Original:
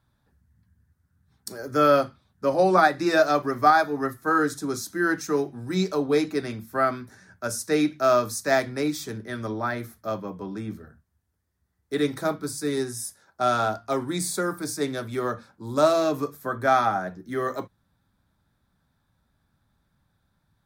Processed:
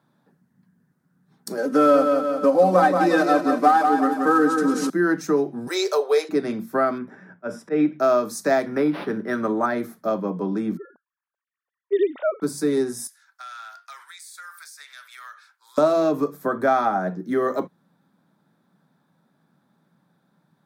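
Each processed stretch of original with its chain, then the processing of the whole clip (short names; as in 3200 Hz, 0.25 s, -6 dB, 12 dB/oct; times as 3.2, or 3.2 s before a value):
1.57–4.9 CVSD 64 kbps + comb 3.9 ms, depth 97% + feedback echo 0.178 s, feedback 40%, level -7 dB
5.67–6.29 steep high-pass 380 Hz 72 dB/oct + high shelf 2500 Hz +10 dB
6.98–8 polynomial smoothing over 25 samples + auto swell 0.127 s
8.66–9.66 bell 1400 Hz +6.5 dB 1.1 oct + decimation joined by straight lines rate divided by 6×
10.77–12.42 sine-wave speech + HPF 320 Hz
13.07–15.78 inverse Chebyshev high-pass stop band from 250 Hz, stop band 80 dB + compressor 4:1, threshold -43 dBFS
whole clip: Chebyshev high-pass 160 Hz, order 4; tilt shelf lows +5 dB, about 1400 Hz; compressor 2:1, threshold -27 dBFS; gain +6 dB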